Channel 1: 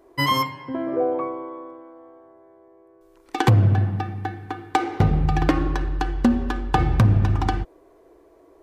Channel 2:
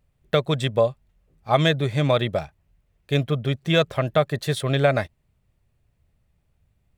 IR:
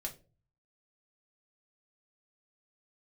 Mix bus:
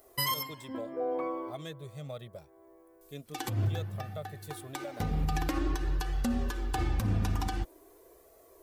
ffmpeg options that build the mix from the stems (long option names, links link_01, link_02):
-filter_complex "[0:a]highshelf=frequency=3400:gain=7.5,volume=-1.5dB[link_01];[1:a]equalizer=frequency=2100:width=0.54:gain=-7.5,volume=-17dB,asplit=2[link_02][link_03];[link_03]apad=whole_len=380467[link_04];[link_01][link_04]sidechaincompress=threshold=-43dB:ratio=8:attack=9.9:release=518[link_05];[link_05][link_02]amix=inputs=2:normalize=0,flanger=delay=1.5:depth=2.7:regen=-35:speed=0.48:shape=sinusoidal,aemphasis=mode=production:type=50fm,alimiter=limit=-20.5dB:level=0:latency=1:release=138"